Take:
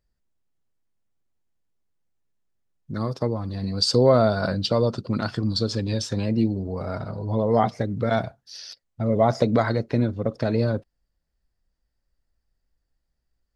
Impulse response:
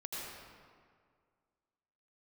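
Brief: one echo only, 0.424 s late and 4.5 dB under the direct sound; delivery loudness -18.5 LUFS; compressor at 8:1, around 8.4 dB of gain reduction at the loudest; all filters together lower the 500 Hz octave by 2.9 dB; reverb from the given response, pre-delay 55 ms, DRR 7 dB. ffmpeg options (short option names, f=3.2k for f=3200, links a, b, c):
-filter_complex "[0:a]equalizer=f=500:t=o:g=-3.5,acompressor=threshold=-23dB:ratio=8,aecho=1:1:424:0.596,asplit=2[a][b];[1:a]atrim=start_sample=2205,adelay=55[c];[b][c]afir=irnorm=-1:irlink=0,volume=-8dB[d];[a][d]amix=inputs=2:normalize=0,volume=9.5dB"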